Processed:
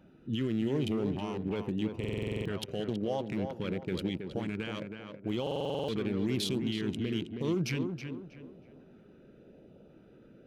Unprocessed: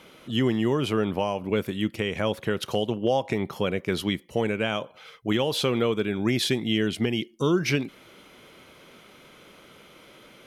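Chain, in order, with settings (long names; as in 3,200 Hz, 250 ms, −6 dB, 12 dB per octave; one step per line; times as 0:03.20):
adaptive Wiener filter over 41 samples
brickwall limiter −23 dBFS, peak gain reduction 10 dB
auto-filter notch saw up 0.91 Hz 430–2,000 Hz
tape delay 321 ms, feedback 39%, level −4.5 dB, low-pass 2,100 Hz
buffer that repeats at 0:01.99/0:05.42, samples 2,048, times 9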